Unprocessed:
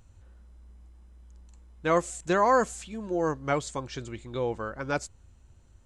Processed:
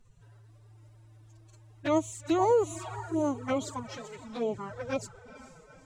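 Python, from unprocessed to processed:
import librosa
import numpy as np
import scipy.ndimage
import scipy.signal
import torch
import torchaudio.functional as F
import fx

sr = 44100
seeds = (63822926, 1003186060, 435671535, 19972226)

y = fx.echo_diffused(x, sr, ms=451, feedback_pct=50, wet_db=-14.5)
y = fx.pitch_keep_formants(y, sr, semitones=10.5)
y = fx.env_flanger(y, sr, rest_ms=8.6, full_db=-25.0)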